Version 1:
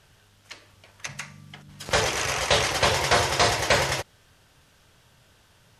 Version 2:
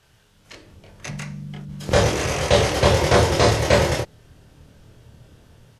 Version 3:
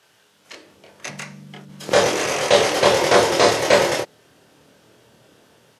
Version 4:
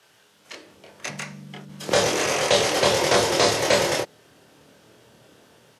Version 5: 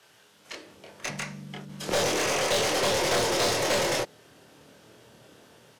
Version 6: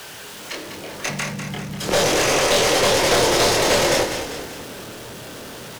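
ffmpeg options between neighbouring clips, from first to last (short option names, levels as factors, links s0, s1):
-filter_complex "[0:a]asplit=2[s0][s1];[s1]adelay=26,volume=0.794[s2];[s0][s2]amix=inputs=2:normalize=0,acrossover=split=530|4200[s3][s4][s5];[s3]dynaudnorm=f=330:g=3:m=5.01[s6];[s6][s4][s5]amix=inputs=3:normalize=0,volume=0.75"
-af "highpass=290,volume=1.41"
-filter_complex "[0:a]acrossover=split=190|3000[s0][s1][s2];[s1]acompressor=threshold=0.0891:ratio=2[s3];[s0][s3][s2]amix=inputs=3:normalize=0"
-af "aeval=exprs='(tanh(11.2*val(0)+0.2)-tanh(0.2))/11.2':c=same"
-filter_complex "[0:a]aeval=exprs='val(0)+0.5*0.0106*sgn(val(0))':c=same,asplit=7[s0][s1][s2][s3][s4][s5][s6];[s1]adelay=198,afreqshift=-33,volume=0.398[s7];[s2]adelay=396,afreqshift=-66,volume=0.2[s8];[s3]adelay=594,afreqshift=-99,volume=0.1[s9];[s4]adelay=792,afreqshift=-132,volume=0.0495[s10];[s5]adelay=990,afreqshift=-165,volume=0.0248[s11];[s6]adelay=1188,afreqshift=-198,volume=0.0124[s12];[s0][s7][s8][s9][s10][s11][s12]amix=inputs=7:normalize=0,volume=2.11"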